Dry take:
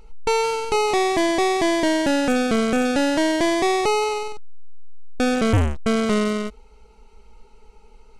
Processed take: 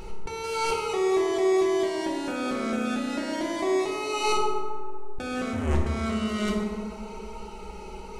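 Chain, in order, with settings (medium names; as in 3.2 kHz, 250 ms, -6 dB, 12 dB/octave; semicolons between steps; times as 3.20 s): bass shelf 61 Hz -9 dB; compressor with a negative ratio -32 dBFS, ratio -1; tape echo 146 ms, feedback 82%, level -12 dB, low-pass 1.5 kHz; reverberation RT60 1.6 s, pre-delay 3 ms, DRR -2.5 dB; trim +1 dB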